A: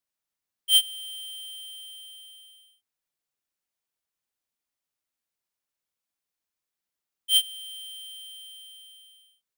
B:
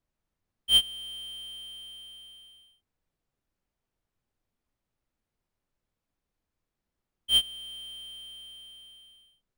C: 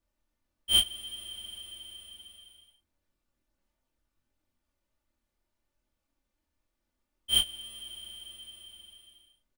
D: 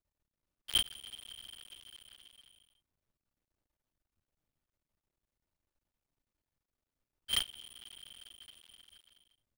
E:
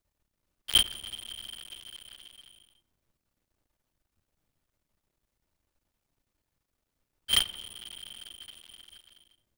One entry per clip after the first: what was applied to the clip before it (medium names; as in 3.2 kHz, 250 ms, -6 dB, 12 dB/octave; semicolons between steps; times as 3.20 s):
tilt EQ -4 dB/octave; trim +5.5 dB
comb 3.4 ms, depth 54%; chorus voices 2, 0.68 Hz, delay 25 ms, depth 2.2 ms; trim +4 dB
cycle switcher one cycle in 2, muted; trim -5 dB
filtered feedback delay 91 ms, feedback 76%, low-pass 1.5 kHz, level -16.5 dB; trim +7.5 dB